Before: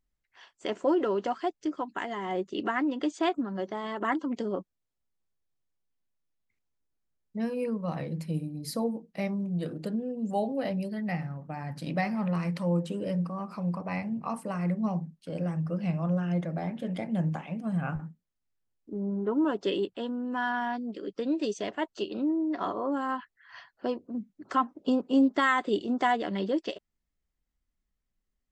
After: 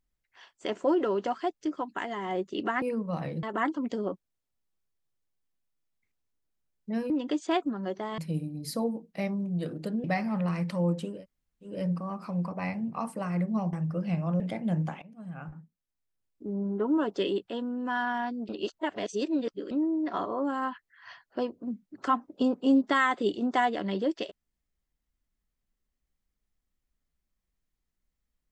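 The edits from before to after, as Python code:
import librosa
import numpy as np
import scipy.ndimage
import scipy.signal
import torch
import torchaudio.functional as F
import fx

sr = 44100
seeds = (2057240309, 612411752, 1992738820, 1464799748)

y = fx.edit(x, sr, fx.swap(start_s=2.82, length_s=1.08, other_s=7.57, other_length_s=0.61),
    fx.cut(start_s=10.04, length_s=1.87),
    fx.insert_room_tone(at_s=13.01, length_s=0.58, crossfade_s=0.24),
    fx.cut(start_s=15.02, length_s=0.47),
    fx.cut(start_s=16.16, length_s=0.71),
    fx.fade_in_from(start_s=17.49, length_s=1.46, floor_db=-19.0),
    fx.reverse_span(start_s=20.96, length_s=1.22), tone=tone)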